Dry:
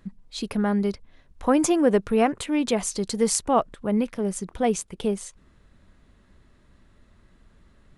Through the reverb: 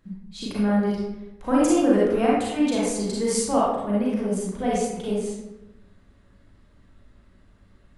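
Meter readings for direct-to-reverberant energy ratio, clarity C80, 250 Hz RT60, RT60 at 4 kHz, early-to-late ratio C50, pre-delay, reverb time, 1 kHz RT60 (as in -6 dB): -7.0 dB, 3.0 dB, 1.2 s, 0.60 s, -2.0 dB, 33 ms, 1.0 s, 0.95 s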